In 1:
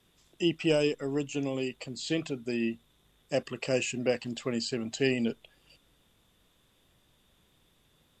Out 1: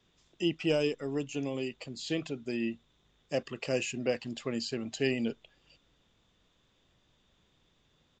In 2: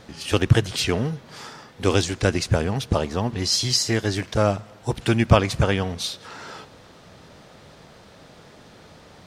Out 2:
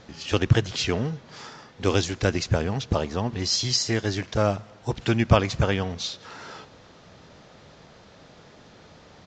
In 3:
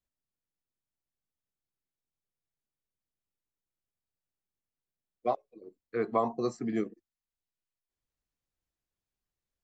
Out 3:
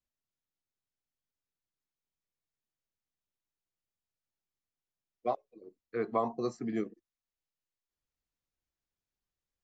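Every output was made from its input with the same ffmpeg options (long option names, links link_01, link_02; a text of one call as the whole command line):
ffmpeg -i in.wav -af "aresample=16000,aresample=44100,volume=-2.5dB" out.wav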